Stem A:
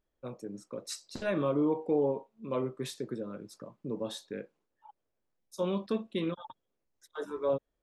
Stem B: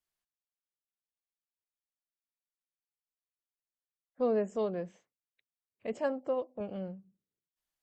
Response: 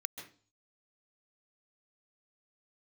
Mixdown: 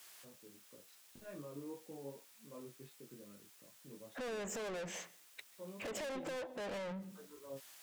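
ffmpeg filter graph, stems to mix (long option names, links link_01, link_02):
-filter_complex "[0:a]lowpass=2700,lowshelf=frequency=440:gain=5,flanger=delay=19.5:depth=2.7:speed=2.7,volume=-19dB[link_01];[1:a]acompressor=threshold=-51dB:ratio=2,alimiter=level_in=21dB:limit=-24dB:level=0:latency=1:release=233,volume=-21dB,asplit=2[link_02][link_03];[link_03]highpass=frequency=720:poles=1,volume=38dB,asoftclip=type=tanh:threshold=-35dB[link_04];[link_02][link_04]amix=inputs=2:normalize=0,lowpass=frequency=4300:poles=1,volume=-6dB,volume=-1dB,asplit=2[link_05][link_06];[link_06]volume=-13dB[link_07];[2:a]atrim=start_sample=2205[link_08];[link_07][link_08]afir=irnorm=-1:irlink=0[link_09];[link_01][link_05][link_09]amix=inputs=3:normalize=0,highshelf=frequency=6300:gain=10.5"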